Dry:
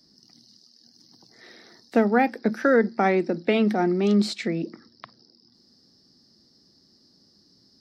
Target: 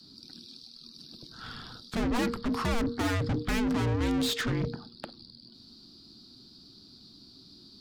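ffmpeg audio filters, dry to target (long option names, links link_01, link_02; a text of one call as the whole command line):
ffmpeg -i in.wav -af "aeval=exprs='(tanh(50.1*val(0)+0.35)-tanh(0.35))/50.1':channel_layout=same,afreqshift=-470,volume=7.5dB" out.wav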